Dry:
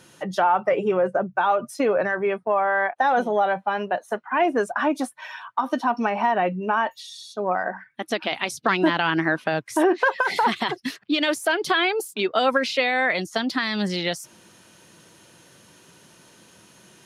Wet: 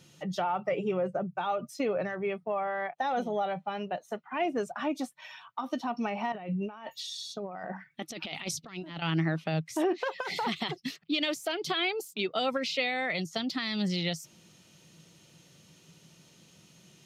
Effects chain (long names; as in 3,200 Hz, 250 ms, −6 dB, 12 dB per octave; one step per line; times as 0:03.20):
parametric band 500 Hz −5 dB 2.9 octaves
0:06.32–0:09.02: compressor whose output falls as the input rises −34 dBFS, ratio −1
thirty-one-band graphic EQ 160 Hz +10 dB, 1,000 Hz −7 dB, 1,600 Hz −11 dB, 10,000 Hz −12 dB
level −4 dB